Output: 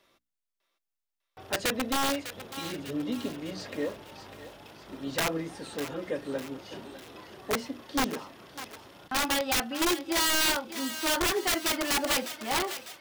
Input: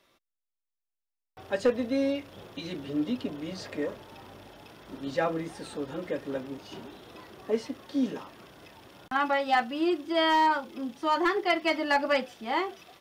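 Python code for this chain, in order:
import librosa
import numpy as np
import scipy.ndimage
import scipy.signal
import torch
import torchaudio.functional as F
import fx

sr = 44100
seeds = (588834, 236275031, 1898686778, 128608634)

y = fx.hum_notches(x, sr, base_hz=60, count=5)
y = (np.mod(10.0 ** (21.0 / 20.0) * y + 1.0, 2.0) - 1.0) / 10.0 ** (21.0 / 20.0)
y = fx.echo_thinned(y, sr, ms=601, feedback_pct=51, hz=800.0, wet_db=-10.5)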